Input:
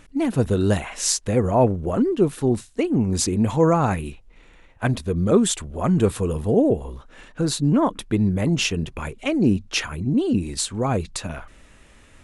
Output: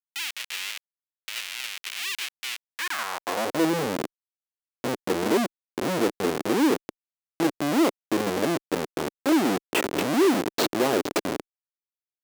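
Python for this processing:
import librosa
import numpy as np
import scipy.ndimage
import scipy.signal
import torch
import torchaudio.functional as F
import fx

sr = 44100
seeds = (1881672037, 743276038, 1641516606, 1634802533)

y = fx.echo_stepped(x, sr, ms=232, hz=2800.0, octaves=0.7, feedback_pct=70, wet_db=-3.5)
y = fx.filter_sweep_lowpass(y, sr, from_hz=350.0, to_hz=6500.0, start_s=7.13, end_s=11.09, q=1.0)
y = fx.schmitt(y, sr, flips_db=-24.5)
y = fx.filter_sweep_highpass(y, sr, from_hz=2600.0, to_hz=330.0, start_s=2.64, end_s=3.64, q=1.9)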